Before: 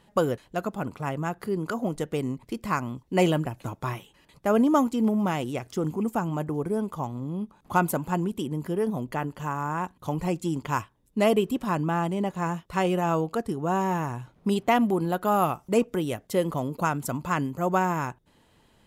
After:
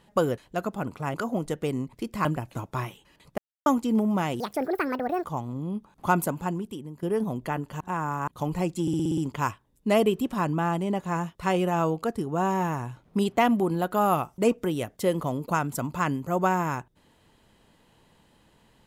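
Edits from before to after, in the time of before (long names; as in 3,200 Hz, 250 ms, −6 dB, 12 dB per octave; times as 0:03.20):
0:01.14–0:01.64: remove
0:02.75–0:03.34: remove
0:04.47–0:04.75: silence
0:05.49–0:06.91: play speed 168%
0:07.88–0:08.69: fade out, to −13.5 dB
0:09.47–0:09.94: reverse
0:10.48: stutter 0.06 s, 7 plays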